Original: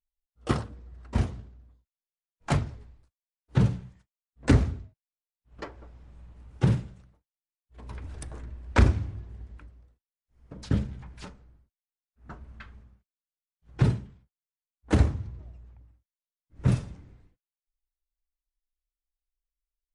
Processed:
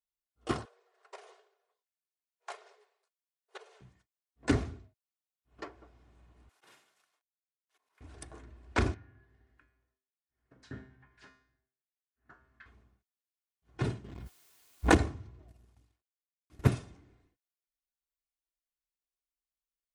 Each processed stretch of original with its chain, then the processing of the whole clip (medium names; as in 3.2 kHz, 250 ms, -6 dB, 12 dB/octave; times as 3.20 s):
0.65–3.81 s: compression 16:1, threshold -31 dBFS + brick-wall FIR high-pass 380 Hz
6.49–8.01 s: CVSD coder 64 kbps + high-pass 920 Hz + slow attack 429 ms
8.94–12.66 s: low-pass that closes with the level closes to 2 kHz, closed at -29.5 dBFS + peaking EQ 1.7 kHz +10.5 dB 0.52 oct + feedback comb 130 Hz, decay 0.56 s, mix 80%
14.04–14.97 s: bass shelf 100 Hz +8.5 dB + waveshaping leveller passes 2 + swell ahead of each attack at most 28 dB/s
15.48–16.69 s: CVSD coder 64 kbps + transient shaper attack +11 dB, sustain -10 dB
whole clip: high-pass 190 Hz 6 dB/octave; comb 2.8 ms, depth 39%; trim -4.5 dB